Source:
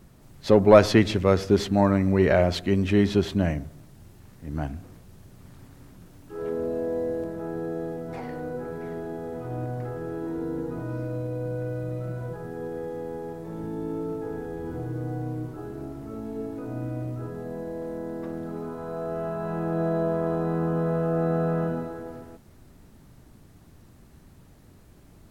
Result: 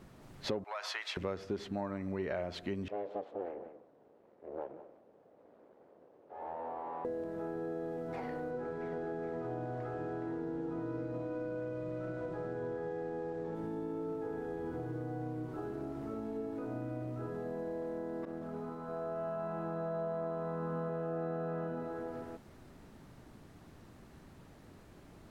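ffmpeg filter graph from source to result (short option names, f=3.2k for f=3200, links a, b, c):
-filter_complex "[0:a]asettb=1/sr,asplit=3[a][b][c];[a]atrim=end=0.644[d];[b]atrim=start=0.64:end=1.17,asetpts=PTS-STARTPTS,afade=t=in:d=0.004:c=qsin,afade=t=out:st=0.526:d=0.004:c=qsin,highpass=f=840:w=0.5412,highpass=f=840:w=1.3066,acompressor=threshold=-25dB:ratio=5:attack=3.2:release=140:knee=1:detection=peak[e];[c]atrim=start=1.166[f];[d][e]acrossfade=d=0.004:c1=hsin:c2=qsin[g];[g][f]acrossfade=d=0.004:c1=qsin:c2=hsin,asettb=1/sr,asplit=3[h][i][j];[h]atrim=end=2.884[k];[i]atrim=start=2.88:end=7.05,asetpts=PTS-STARTPTS,afade=t=in:d=0.004:c=qsin,afade=t=out:st=4.166:d=0.004:c=qsin,aeval=exprs='abs(val(0))':c=same,bandpass=f=550:t=q:w=2.2,aecho=1:1:181:0.15,atrim=end_sample=183897[l];[j]atrim=start=7.046[m];[k][l]acrossfade=d=0.004:c1=hsin:c2=qsin[n];[n][m]acrossfade=d=0.004:c1=qsin:c2=hsin,asettb=1/sr,asplit=3[o][p][q];[o]atrim=end=8.514[r];[p]atrim=start=8.51:end=13.55,asetpts=PTS-STARTPTS,afade=t=in:d=0.004:c=qsin,afade=t=out:st=5.036:d=0.004:c=qsin,lowpass=7.3k,aecho=1:1:418:0.631,atrim=end_sample=222264[s];[q]atrim=start=13.546[t];[r][s]acrossfade=d=0.004:c1=hsin:c2=qsin[u];[u][t]acrossfade=d=0.004:c1=qsin:c2=hsin,asettb=1/sr,asplit=3[v][w][x];[v]atrim=end=18.254[y];[w]atrim=start=18.25:end=20.89,asetpts=PTS-STARTPTS,afade=t=in:d=0.004:c=qsin,afade=t=out:st=2.636:d=0.004:c=qsin,agate=range=-33dB:threshold=-29dB:ratio=3:release=100:detection=peak,aecho=1:1:153:0.596,atrim=end_sample=116424[z];[x]atrim=start=20.886[aa];[y][z]acrossfade=d=0.004:c1=hsin:c2=qsin[ab];[ab][aa]acrossfade=d=0.004:c1=qsin:c2=hsin,lowpass=f=3.2k:p=1,lowshelf=f=180:g=-10,acompressor=threshold=-39dB:ratio=4,volume=2dB"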